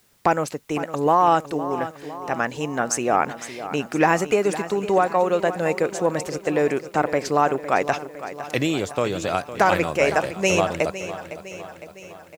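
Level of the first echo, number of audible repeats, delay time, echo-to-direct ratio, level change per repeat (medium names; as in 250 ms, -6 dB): -13.0 dB, 5, 508 ms, -11.5 dB, -5.0 dB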